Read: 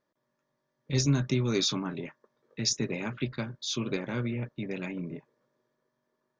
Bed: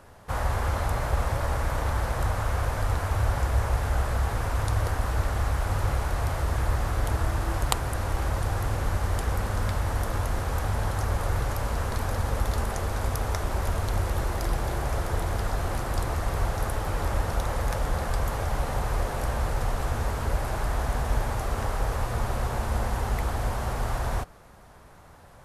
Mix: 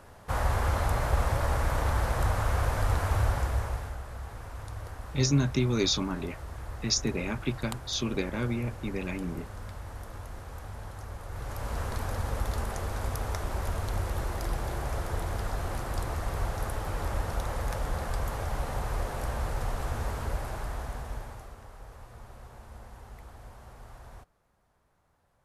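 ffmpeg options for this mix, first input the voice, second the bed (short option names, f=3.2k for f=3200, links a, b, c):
-filter_complex "[0:a]adelay=4250,volume=1dB[a];[1:a]volume=9dB,afade=t=out:st=3.15:d=0.83:silence=0.211349,afade=t=in:st=11.29:d=0.49:silence=0.334965,afade=t=out:st=20.14:d=1.45:silence=0.16788[b];[a][b]amix=inputs=2:normalize=0"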